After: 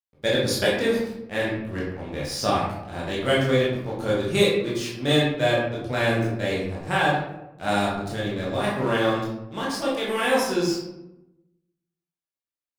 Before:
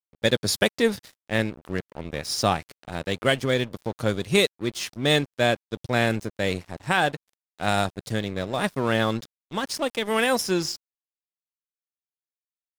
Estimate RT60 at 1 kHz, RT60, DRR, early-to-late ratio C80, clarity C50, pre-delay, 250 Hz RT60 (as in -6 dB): 0.85 s, 0.95 s, -6.5 dB, 4.5 dB, 1.5 dB, 15 ms, 1.1 s